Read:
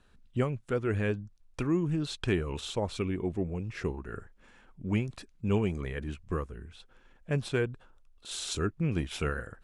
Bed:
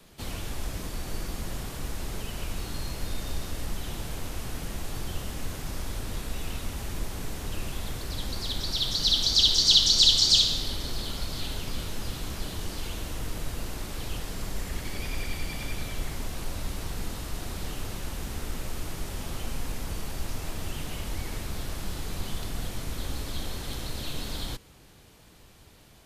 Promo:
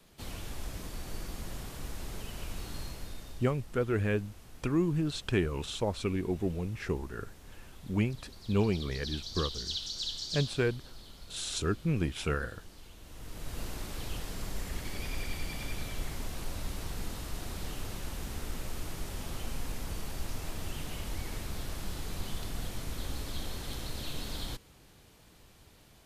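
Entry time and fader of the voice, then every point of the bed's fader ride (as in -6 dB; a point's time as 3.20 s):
3.05 s, 0.0 dB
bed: 2.81 s -6 dB
3.62 s -17.5 dB
12.98 s -17.5 dB
13.60 s -4 dB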